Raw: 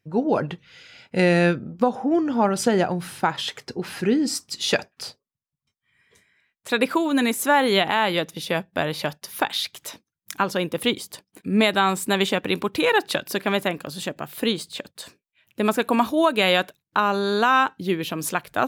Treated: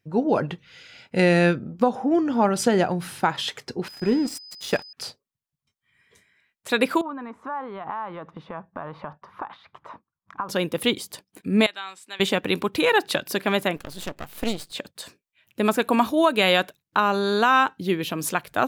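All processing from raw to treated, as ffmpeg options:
-filter_complex "[0:a]asettb=1/sr,asplit=3[a][b][c];[a]atrim=end=3.884[d];[b]atrim=start=3.88:end=4.93,asetpts=PTS-STARTPTS,afade=t=in:d=0.004:c=qsin,afade=t=out:st=1.046:d=0.004:c=qsin,equalizer=f=4.1k:w=0.62:g=-7,aeval=exprs='sgn(val(0))*max(abs(val(0))-0.015,0)':c=same,aeval=exprs='val(0)+0.00891*sin(2*PI*5000*n/s)':c=same[e];[c]atrim=start=4.926[f];[d][e]acrossfade=d=0.004:c1=hsin:c2=qsin[g];[g][f]acrossfade=d=0.004:c1=qsin:c2=hsin,asettb=1/sr,asplit=3[h][i][j];[h]atrim=end=7.014[k];[i]atrim=start=7.01:end=10.49,asetpts=PTS-STARTPTS,afade=t=in:d=0.004:c=qsin,afade=t=out:st=3.476:d=0.004:c=qsin,acompressor=threshold=-29dB:ratio=12:attack=3.2:release=140:knee=1:detection=peak,lowpass=f=1.1k:t=q:w=3.9,equalizer=f=390:w=0.73:g=-4.5[l];[j]atrim=start=10.486[m];[k][l]acrossfade=d=0.004:c1=hsin:c2=qsin[n];[n][m]acrossfade=d=0.004:c1=qsin:c2=hsin,asettb=1/sr,asplit=3[o][p][q];[o]atrim=end=11.664[r];[p]atrim=start=11.66:end=12.2,asetpts=PTS-STARTPTS,afade=t=in:d=0.004:c=qsin,afade=t=out:st=0.536:d=0.004:c=qsin,highpass=140,lowpass=3.2k,aderivative[s];[q]atrim=start=12.196[t];[r][s]acrossfade=d=0.004:c1=hsin:c2=qsin[u];[u][t]acrossfade=d=0.004:c1=qsin:c2=hsin,asettb=1/sr,asplit=3[v][w][x];[v]atrim=end=13.764[y];[w]atrim=start=13.76:end=14.72,asetpts=PTS-STARTPTS,afade=t=in:d=0.004:c=qsin,afade=t=out:st=0.956:d=0.004:c=qsin,asuperstop=centerf=930:order=4:qfactor=6.9,aeval=exprs='max(val(0),0)':c=same[z];[x]atrim=start=14.716[aa];[y][z]acrossfade=d=0.004:c1=hsin:c2=qsin[ab];[ab][aa]acrossfade=d=0.004:c1=qsin:c2=hsin"

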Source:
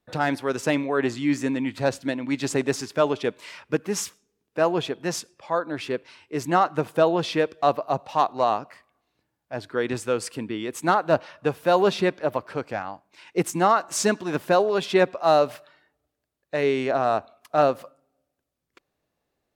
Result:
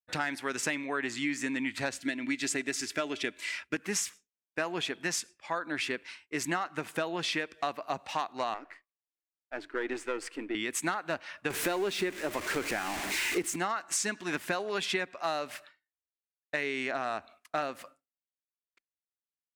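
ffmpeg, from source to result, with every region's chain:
-filter_complex "[0:a]asettb=1/sr,asplit=3[a][b][c];[a]atrim=end=2.004[d];[b]atrim=start=2:end=3.76,asetpts=PTS-STARTPTS,afade=t=in:d=0.004:c=qsin,afade=t=out:st=1.756:d=0.004:c=qsin,equalizer=f=1k:w=2.3:g=-6.5,aecho=1:1:3:0.36,atrim=end_sample=77616[e];[c]atrim=start=3.756[f];[d][e]acrossfade=d=0.004:c1=hsin:c2=qsin[g];[g][f]acrossfade=d=0.004:c1=qsin:c2=hsin,asettb=1/sr,asplit=3[h][i][j];[h]atrim=end=8.544[k];[i]atrim=start=8.54:end=10.55,asetpts=PTS-STARTPTS,afade=t=in:d=0.004:c=qsin,afade=t=out:st=2.006:d=0.004:c=qsin,aeval=exprs='if(lt(val(0),0),0.447*val(0),val(0))':c=same,lowpass=f=1.8k:p=1,lowshelf=f=240:t=q:w=3:g=-9[l];[j]atrim=start=10.546[m];[k][l]acrossfade=d=0.004:c1=hsin:c2=qsin[n];[n][m]acrossfade=d=0.004:c1=qsin:c2=hsin,asettb=1/sr,asplit=3[o][p][q];[o]atrim=end=11.504[r];[p]atrim=start=11.5:end=13.56,asetpts=PTS-STARTPTS,afade=t=in:d=0.004:c=qsin,afade=t=out:st=2.056:d=0.004:c=qsin,aeval=exprs='val(0)+0.5*0.0335*sgn(val(0))':c=same,equalizer=f=370:t=o:w=0.8:g=9[s];[q]atrim=start=13.556[t];[r][s]acrossfade=d=0.004:c1=hsin:c2=qsin[u];[u][t]acrossfade=d=0.004:c1=qsin:c2=hsin,agate=range=-33dB:threshold=-42dB:ratio=3:detection=peak,equalizer=f=125:t=o:w=1:g=-10,equalizer=f=500:t=o:w=1:g=-8,equalizer=f=1k:t=o:w=1:g=-3,equalizer=f=2k:t=o:w=1:g=8,equalizer=f=8k:t=o:w=1:g=6,acompressor=threshold=-28dB:ratio=10"

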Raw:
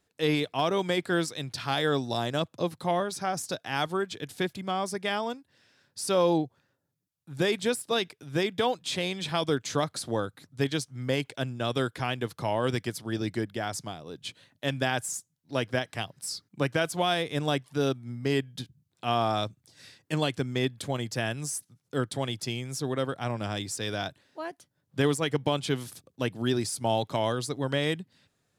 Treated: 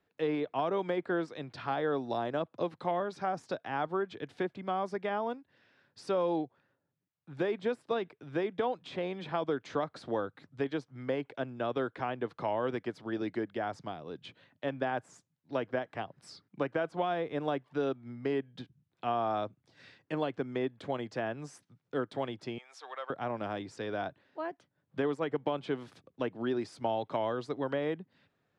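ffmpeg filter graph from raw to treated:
-filter_complex "[0:a]asettb=1/sr,asplit=3[a][b][c];[a]atrim=end=22.584[d];[b]atrim=start=22.58:end=23.1,asetpts=PTS-STARTPTS,afade=t=in:d=0.004:c=qsin,afade=t=out:st=0.516:d=0.004:c=qsin,aeval=exprs='if(lt(val(0),0),0.708*val(0),val(0))':c=same,highpass=f=720:w=0.5412,highpass=f=720:w=1.3066[e];[c]atrim=start=23.096[f];[d][e]acrossfade=d=0.004:c1=hsin:c2=qsin[g];[g][f]acrossfade=d=0.004:c1=qsin:c2=hsin,lowpass=2.6k,lowshelf=f=95:g=-10,acrossover=split=230|1400[h][i][j];[h]acompressor=threshold=-48dB:ratio=4[k];[i]acompressor=threshold=-28dB:ratio=4[l];[j]acompressor=threshold=-48dB:ratio=4[m];[k][l][m]amix=inputs=3:normalize=0"

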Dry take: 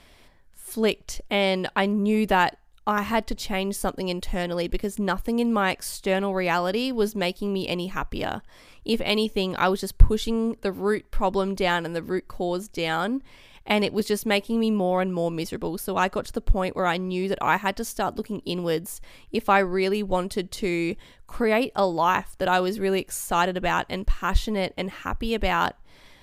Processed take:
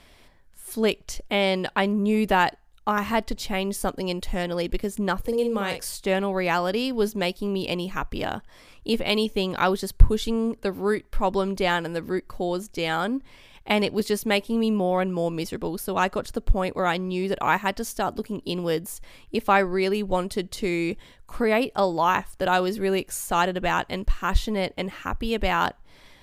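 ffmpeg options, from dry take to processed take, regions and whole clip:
-filter_complex "[0:a]asettb=1/sr,asplit=3[a][b][c];[a]atrim=end=5.204[d];[b]atrim=start=5.2:end=5.85,asetpts=PTS-STARTPTS,afade=t=in:d=0.004:c=qsin,afade=t=out:st=0.646:d=0.004:c=qsin,equalizer=f=480:w=5.6:g=14,acrossover=split=190|3000[e][f][g];[f]acompressor=threshold=-37dB:ratio=1.5:attack=3.2:release=140:knee=2.83:detection=peak[h];[e][h][g]amix=inputs=3:normalize=0,asplit=2[i][j];[j]adelay=45,volume=-7dB[k];[i][k]amix=inputs=2:normalize=0,atrim=end_sample=28665[l];[c]atrim=start=5.846[m];[d][l]acrossfade=d=0.004:c1=hsin:c2=qsin[n];[n][m]acrossfade=d=0.004:c1=qsin:c2=hsin"

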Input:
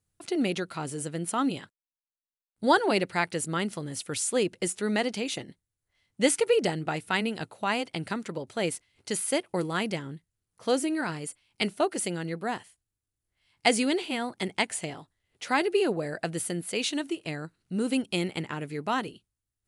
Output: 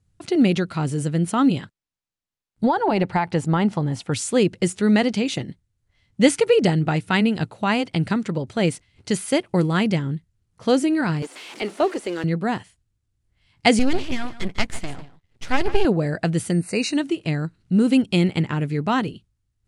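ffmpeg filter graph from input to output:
-filter_complex "[0:a]asettb=1/sr,asplit=3[a][b][c];[a]atrim=end=2.644[d];[b]atrim=start=2.64:end=4.12,asetpts=PTS-STARTPTS,afade=t=in:d=0.004:c=qsin,afade=t=out:st=1.476:d=0.004:c=qsin,lowpass=f=3.5k:p=1,equalizer=f=840:t=o:w=0.63:g=11.5,acompressor=threshold=-22dB:ratio=8:attack=3.2:release=140:knee=1:detection=peak[e];[c]atrim=start=4.116[f];[d][e]acrossfade=d=0.004:c1=hsin:c2=qsin[g];[g][f]acrossfade=d=0.004:c1=qsin:c2=hsin,asettb=1/sr,asplit=3[h][i][j];[h]atrim=end=11.224[k];[i]atrim=start=11.22:end=12.24,asetpts=PTS-STARTPTS,afade=t=in:d=0.004:c=qsin,afade=t=out:st=1.016:d=0.004:c=qsin,aeval=exprs='val(0)+0.5*0.0188*sgn(val(0))':c=same,highpass=f=330:w=0.5412,highpass=f=330:w=1.3066,deesser=0.9[l];[j]atrim=start=12.236[m];[k][l]acrossfade=d=0.004:c1=hsin:c2=qsin[n];[n][m]acrossfade=d=0.004:c1=qsin:c2=hsin,asettb=1/sr,asplit=3[o][p][q];[o]atrim=end=13.794[r];[p]atrim=start=13.79:end=15.85,asetpts=PTS-STARTPTS,afade=t=in:d=0.004:c=qsin,afade=t=out:st=2.056:d=0.004:c=qsin,aecho=1:1:149:0.178,atrim=end_sample=90846,aeval=exprs='max(val(0),0)':c=same[s];[q]atrim=start=15.846[t];[r][s]acrossfade=d=0.004:c1=hsin:c2=qsin[u];[u][t]acrossfade=d=0.004:c1=qsin:c2=hsin,asettb=1/sr,asplit=3[v][w][x];[v]atrim=end=16.514[y];[w]atrim=start=16.51:end=16.96,asetpts=PTS-STARTPTS,afade=t=in:d=0.004:c=qsin,afade=t=out:st=0.446:d=0.004:c=qsin,aeval=exprs='val(0)+0.00398*sin(2*PI*8700*n/s)':c=same,asuperstop=centerf=3300:order=12:qfactor=3.4[z];[x]atrim=start=16.956[aa];[y][z]acrossfade=d=0.004:c1=hsin:c2=qsin[ab];[ab][aa]acrossfade=d=0.004:c1=qsin:c2=hsin,lowpass=7.9k,bass=f=250:g=11,treble=f=4k:g=-1,volume=5.5dB"

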